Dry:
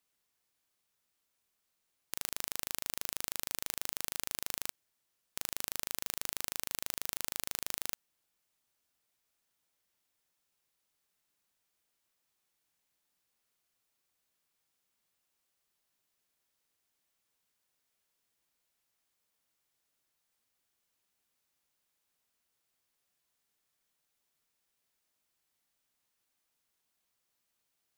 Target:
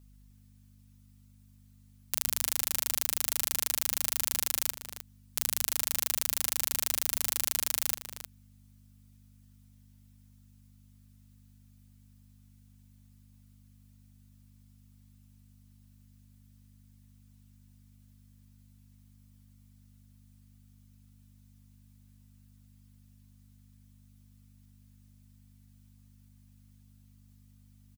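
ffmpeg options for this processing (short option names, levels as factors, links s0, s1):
-filter_complex "[0:a]highshelf=f=3900:g=7,aecho=1:1:6.6:0.82,aeval=exprs='val(0)+0.00158*(sin(2*PI*50*n/s)+sin(2*PI*2*50*n/s)/2+sin(2*PI*3*50*n/s)/3+sin(2*PI*4*50*n/s)/4+sin(2*PI*5*50*n/s)/5)':c=same,asplit=2[s0][s1];[s1]adelay=309,volume=0.447,highshelf=f=4000:g=-6.95[s2];[s0][s2]amix=inputs=2:normalize=0"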